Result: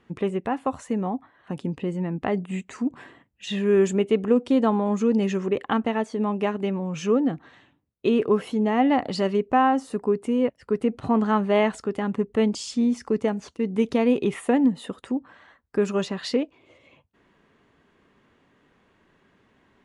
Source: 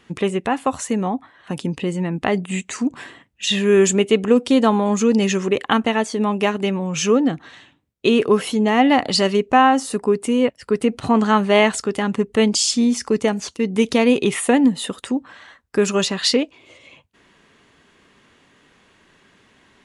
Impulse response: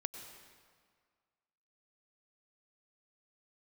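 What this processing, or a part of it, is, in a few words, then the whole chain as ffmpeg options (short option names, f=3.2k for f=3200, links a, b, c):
through cloth: -af "highshelf=f=2.5k:g=-14,volume=-4.5dB"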